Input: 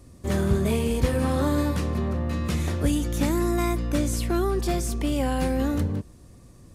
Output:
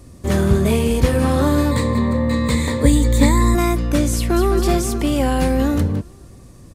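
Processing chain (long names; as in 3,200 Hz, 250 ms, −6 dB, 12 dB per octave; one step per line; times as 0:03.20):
0:01.71–0:03.55: EQ curve with evenly spaced ripples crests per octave 1, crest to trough 15 dB
0:04.15–0:04.55: delay throw 210 ms, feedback 65%, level −7.5 dB
level +7 dB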